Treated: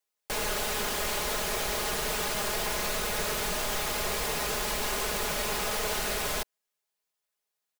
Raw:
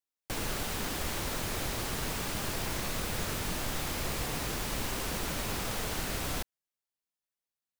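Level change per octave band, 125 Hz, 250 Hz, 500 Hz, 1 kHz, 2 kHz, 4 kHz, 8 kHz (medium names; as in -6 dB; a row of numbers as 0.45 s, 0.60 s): -4.5 dB, -2.0 dB, +6.5 dB, +5.5 dB, +5.5 dB, +5.0 dB, +5.0 dB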